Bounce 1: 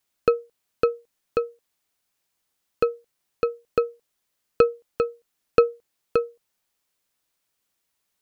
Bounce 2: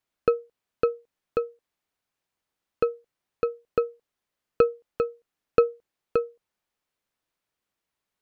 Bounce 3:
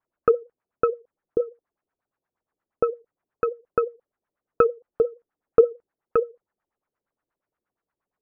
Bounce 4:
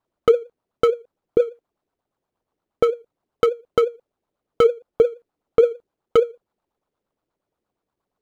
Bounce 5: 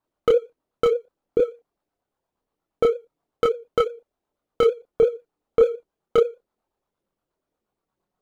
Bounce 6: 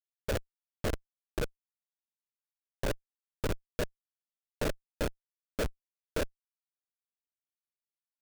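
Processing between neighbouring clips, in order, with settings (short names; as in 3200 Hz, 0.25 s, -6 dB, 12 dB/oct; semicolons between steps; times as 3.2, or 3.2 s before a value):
high shelf 4100 Hz -11.5 dB; gain -2 dB
LFO low-pass sine 8.5 Hz 350–1700 Hz
median filter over 25 samples; limiter -14 dBFS, peak gain reduction 8.5 dB; gain +8 dB
chorus voices 6, 0.26 Hz, delay 27 ms, depth 3.9 ms; gain +1.5 dB
noise vocoder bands 12; frequency-shifting echo 0.476 s, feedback 55%, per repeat -110 Hz, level -19 dB; Schmitt trigger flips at -15 dBFS; gain -2.5 dB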